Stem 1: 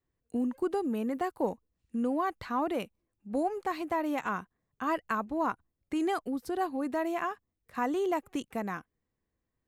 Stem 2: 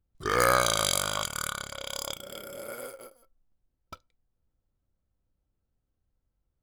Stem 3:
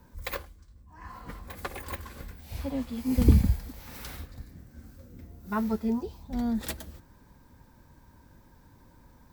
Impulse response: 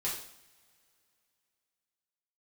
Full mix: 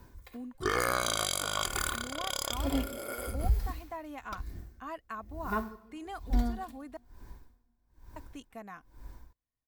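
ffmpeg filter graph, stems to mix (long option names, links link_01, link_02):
-filter_complex "[0:a]equalizer=frequency=360:width=3.6:gain=-11.5,volume=-10dB,asplit=3[link_01][link_02][link_03];[link_01]atrim=end=6.97,asetpts=PTS-STARTPTS,afade=type=out:start_time=6.966:duration=0.004:curve=hsin[link_04];[link_02]atrim=start=6.97:end=8.16,asetpts=PTS-STARTPTS,volume=0[link_05];[link_03]atrim=start=8.16,asetpts=PTS-STARTPTS,afade=type=in:duration=0.004:curve=hsin[link_06];[link_04][link_05][link_06]concat=n=3:v=0:a=1[link_07];[1:a]adelay=400,volume=1dB[link_08];[2:a]asubboost=boost=4:cutoff=60,aeval=exprs='val(0)*pow(10,-33*(0.5-0.5*cos(2*PI*1.1*n/s))/20)':channel_layout=same,volume=1dB,asplit=2[link_09][link_10];[link_10]volume=-10.5dB[link_11];[3:a]atrim=start_sample=2205[link_12];[link_11][link_12]afir=irnorm=-1:irlink=0[link_13];[link_07][link_08][link_09][link_13]amix=inputs=4:normalize=0,aecho=1:1:2.8:0.32,alimiter=limit=-17dB:level=0:latency=1:release=391"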